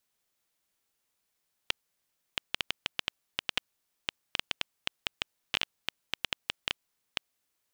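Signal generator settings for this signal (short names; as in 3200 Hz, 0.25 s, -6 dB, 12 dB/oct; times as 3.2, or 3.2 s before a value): random clicks 5.9/s -9.5 dBFS 5.77 s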